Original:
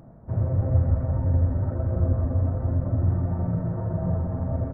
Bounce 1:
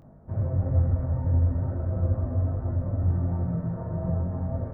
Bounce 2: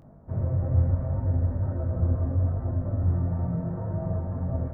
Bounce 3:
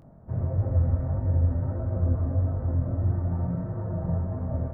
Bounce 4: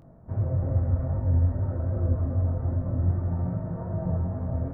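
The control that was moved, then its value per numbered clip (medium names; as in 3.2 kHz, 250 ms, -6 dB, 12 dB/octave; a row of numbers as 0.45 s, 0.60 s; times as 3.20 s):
chorus, rate: 0.4 Hz, 0.73 Hz, 1.6 Hz, 2.5 Hz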